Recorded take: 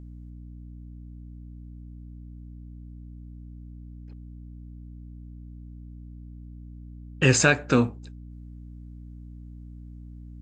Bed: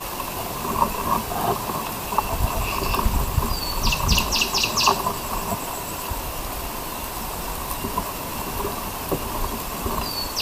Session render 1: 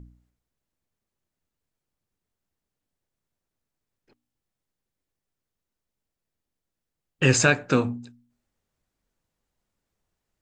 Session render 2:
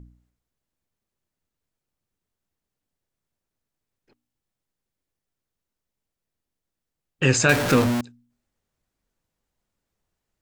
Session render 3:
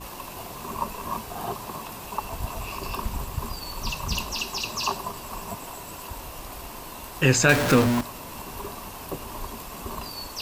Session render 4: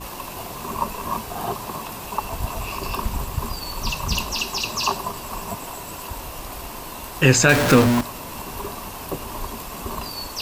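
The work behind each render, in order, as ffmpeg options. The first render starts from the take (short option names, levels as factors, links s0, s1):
-af "bandreject=f=60:t=h:w=4,bandreject=f=120:t=h:w=4,bandreject=f=180:t=h:w=4,bandreject=f=240:t=h:w=4,bandreject=f=300:t=h:w=4"
-filter_complex "[0:a]asettb=1/sr,asplit=3[s0][s1][s2];[s0]atrim=end=7.494[s3];[s1]atrim=start=7.49:end=8.01,asetpts=PTS-STARTPTS,afade=t=in:d=0.004:c=qsin,afade=t=out:st=0.516:d=0.004:c=qsin,aeval=exprs='val(0)+0.5*0.112*sgn(val(0))':c=same[s4];[s2]atrim=start=8.006[s5];[s3][s4]acrossfade=d=0.004:c1=hsin:c2=qsin[s6];[s6][s5]acrossfade=d=0.004:c1=qsin:c2=hsin"
-filter_complex "[1:a]volume=0.355[s0];[0:a][s0]amix=inputs=2:normalize=0"
-af "volume=1.68,alimiter=limit=0.794:level=0:latency=1"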